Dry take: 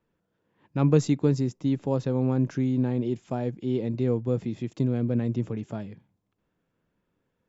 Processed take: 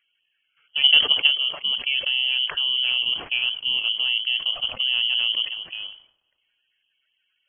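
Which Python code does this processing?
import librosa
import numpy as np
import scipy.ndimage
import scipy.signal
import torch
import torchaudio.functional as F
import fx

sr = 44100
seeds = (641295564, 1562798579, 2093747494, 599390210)

p1 = fx.spec_quant(x, sr, step_db=30)
p2 = fx.level_steps(p1, sr, step_db=10)
p3 = p2 + fx.echo_wet_highpass(p2, sr, ms=106, feedback_pct=66, hz=2100.0, wet_db=-18, dry=0)
p4 = fx.freq_invert(p3, sr, carrier_hz=3200)
p5 = fx.sustainer(p4, sr, db_per_s=130.0)
y = F.gain(torch.from_numpy(p5), 7.0).numpy()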